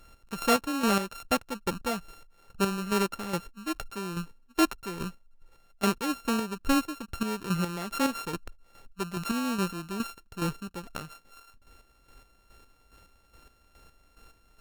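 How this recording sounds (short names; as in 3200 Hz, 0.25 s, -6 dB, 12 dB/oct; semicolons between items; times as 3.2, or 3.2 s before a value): a buzz of ramps at a fixed pitch in blocks of 32 samples; chopped level 2.4 Hz, depth 60%, duty 35%; Opus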